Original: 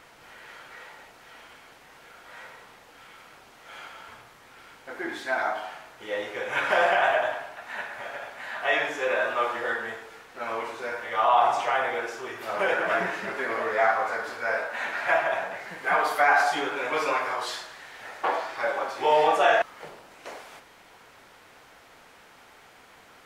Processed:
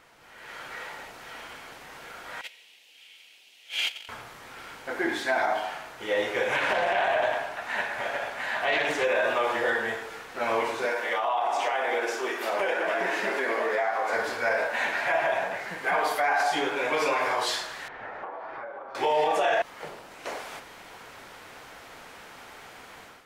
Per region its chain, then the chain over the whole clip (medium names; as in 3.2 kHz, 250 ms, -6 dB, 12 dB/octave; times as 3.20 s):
2.41–4.09 s: gate -43 dBFS, range -22 dB + high-pass 280 Hz + resonant high shelf 1.9 kHz +13.5 dB, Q 3
6.52–9.04 s: compression 2:1, threshold -26 dBFS + loudspeaker Doppler distortion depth 0.23 ms
10.85–14.13 s: high-pass 240 Hz 24 dB/octave + compression 8:1, threshold -28 dBFS
17.88–18.95 s: low-pass 1.5 kHz + compression 16:1, threshold -40 dBFS
whole clip: level rider gain up to 11.5 dB; dynamic bell 1.3 kHz, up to -7 dB, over -33 dBFS, Q 3.5; peak limiter -11 dBFS; trim -5 dB